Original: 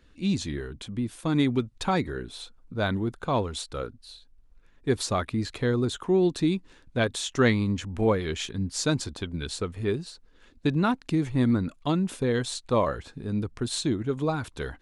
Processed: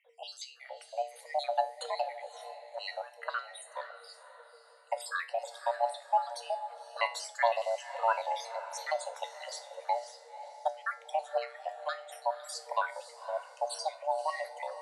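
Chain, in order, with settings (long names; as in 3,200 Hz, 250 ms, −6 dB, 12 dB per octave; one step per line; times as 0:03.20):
time-frequency cells dropped at random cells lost 64%
tuned comb filter 130 Hz, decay 0.36 s, harmonics all, mix 70%
on a send: feedback delay with all-pass diffusion 532 ms, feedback 42%, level −12.5 dB
on the sum: frequency shifter +460 Hz
level +3.5 dB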